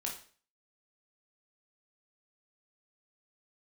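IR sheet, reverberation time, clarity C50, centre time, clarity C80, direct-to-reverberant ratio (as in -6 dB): 0.45 s, 7.5 dB, 25 ms, 12.5 dB, -1.0 dB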